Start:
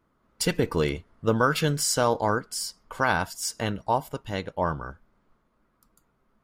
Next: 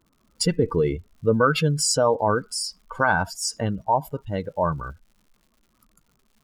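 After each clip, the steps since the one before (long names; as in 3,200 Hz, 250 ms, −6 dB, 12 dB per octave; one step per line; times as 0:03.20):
expanding power law on the bin magnitudes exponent 1.8
surface crackle 170 per second −53 dBFS
level +3.5 dB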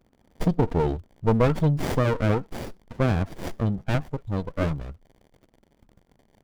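brick-wall band-stop 1,400–3,000 Hz
windowed peak hold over 33 samples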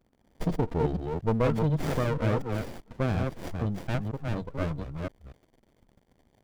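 delay that plays each chunk backwards 242 ms, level −4 dB
level −5.5 dB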